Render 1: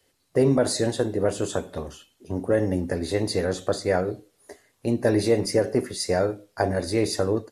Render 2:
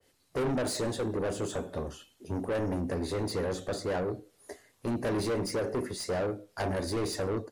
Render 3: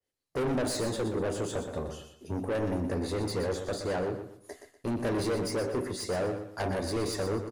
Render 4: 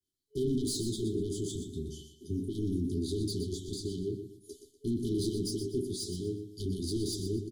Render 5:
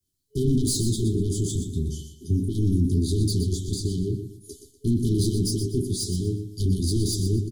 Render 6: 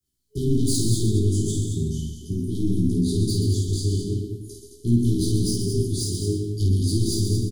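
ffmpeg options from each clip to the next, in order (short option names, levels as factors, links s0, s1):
-af "asoftclip=type=tanh:threshold=0.0447,adynamicequalizer=threshold=0.00355:dfrequency=1800:dqfactor=0.7:tfrequency=1800:tqfactor=0.7:attack=5:release=100:ratio=0.375:range=3:mode=cutabove:tftype=highshelf"
-af "agate=range=0.1:threshold=0.00112:ratio=16:detection=peak,aecho=1:1:122|244|366:0.355|0.106|0.0319"
-af "afftfilt=real='re*(1-between(b*sr/4096,420,3000))':imag='im*(1-between(b*sr/4096,420,3000))':win_size=4096:overlap=0.75"
-af "bass=f=250:g=13,treble=f=4000:g=9,volume=1.19"
-filter_complex "[0:a]flanger=delay=16:depth=3.5:speed=0.39,asplit=2[s0][s1];[s1]aecho=0:1:51|134|217|292:0.631|0.335|0.447|0.178[s2];[s0][s2]amix=inputs=2:normalize=0,volume=1.26"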